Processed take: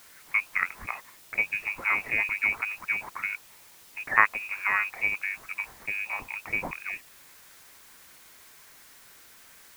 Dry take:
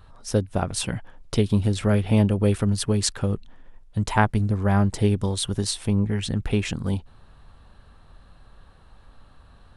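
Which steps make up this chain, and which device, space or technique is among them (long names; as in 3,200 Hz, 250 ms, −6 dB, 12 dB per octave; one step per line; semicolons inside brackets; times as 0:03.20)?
scrambled radio voice (band-pass filter 370–2,900 Hz; voice inversion scrambler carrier 2,700 Hz; white noise bed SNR 20 dB)
dynamic equaliser 1,000 Hz, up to +6 dB, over −44 dBFS, Q 1.3
level −1 dB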